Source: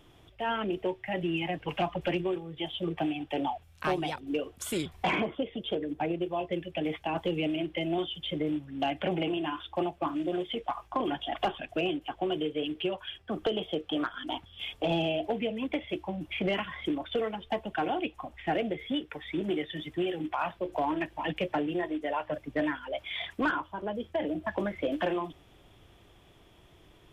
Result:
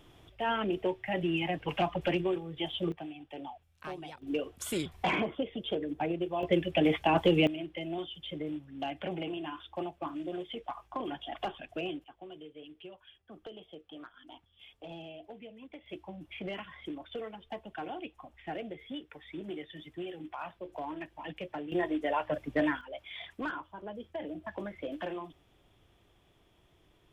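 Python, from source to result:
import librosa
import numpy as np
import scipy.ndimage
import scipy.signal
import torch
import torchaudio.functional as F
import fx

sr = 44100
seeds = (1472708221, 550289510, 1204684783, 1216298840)

y = fx.gain(x, sr, db=fx.steps((0.0, 0.0), (2.92, -12.0), (4.22, -1.5), (6.43, 6.0), (7.47, -6.5), (12.04, -17.0), (15.86, -9.5), (21.72, 1.0), (22.81, -8.0)))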